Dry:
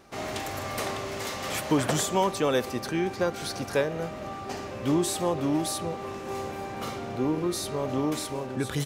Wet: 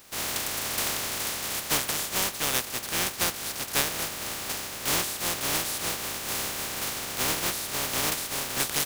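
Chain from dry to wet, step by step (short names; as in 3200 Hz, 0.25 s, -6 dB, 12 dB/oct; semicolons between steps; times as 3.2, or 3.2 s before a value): spectral contrast lowered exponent 0.18; vocal rider within 3 dB 0.5 s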